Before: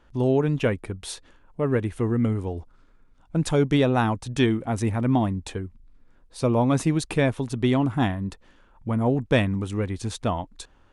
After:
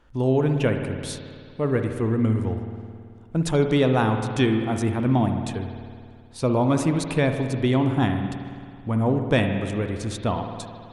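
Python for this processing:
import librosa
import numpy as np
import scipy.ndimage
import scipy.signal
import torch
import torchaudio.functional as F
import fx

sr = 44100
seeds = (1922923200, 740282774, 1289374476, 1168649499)

y = fx.rev_spring(x, sr, rt60_s=2.2, pass_ms=(54,), chirp_ms=25, drr_db=5.5)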